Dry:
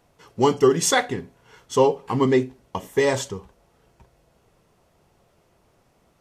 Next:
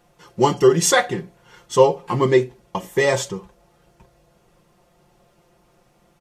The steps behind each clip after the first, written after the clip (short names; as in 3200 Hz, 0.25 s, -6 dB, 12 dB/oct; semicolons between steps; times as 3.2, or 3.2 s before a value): comb 5.7 ms, depth 73%; gain +1.5 dB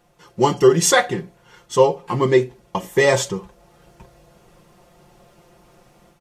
AGC gain up to 7.5 dB; gain -1 dB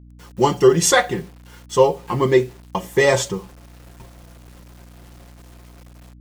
requantised 8-bit, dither none; hum 60 Hz, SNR 23 dB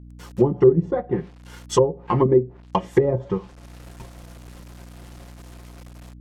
transient shaper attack +1 dB, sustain -4 dB; treble ducked by the level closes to 340 Hz, closed at -13 dBFS; gain +2 dB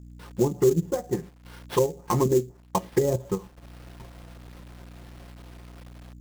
in parallel at 0 dB: level quantiser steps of 22 dB; on the sum: sample-rate reducer 7100 Hz, jitter 20%; gain -8 dB